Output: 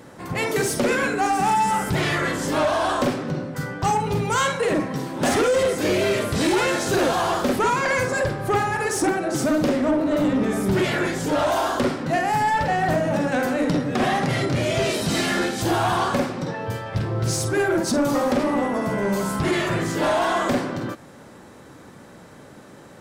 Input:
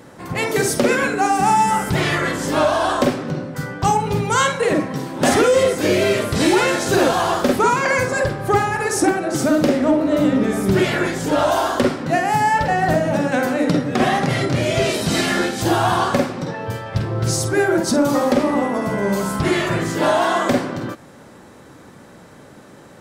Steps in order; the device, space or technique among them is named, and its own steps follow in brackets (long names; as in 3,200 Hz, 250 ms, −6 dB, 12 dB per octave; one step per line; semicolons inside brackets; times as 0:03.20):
saturation between pre-emphasis and de-emphasis (high-shelf EQ 7,500 Hz +11.5 dB; soft clipping −13 dBFS, distortion −15 dB; high-shelf EQ 7,500 Hz −11.5 dB)
level −1.5 dB